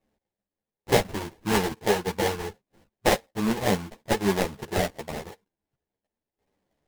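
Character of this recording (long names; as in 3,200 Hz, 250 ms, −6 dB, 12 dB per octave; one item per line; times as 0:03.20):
aliases and images of a low sample rate 1,300 Hz, jitter 20%
a shimmering, thickened sound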